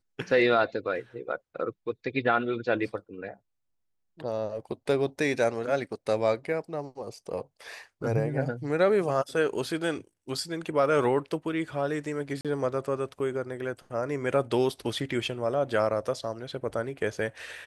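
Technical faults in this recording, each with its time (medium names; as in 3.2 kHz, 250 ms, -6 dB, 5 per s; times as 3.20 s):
12.41–12.45 s: dropout 37 ms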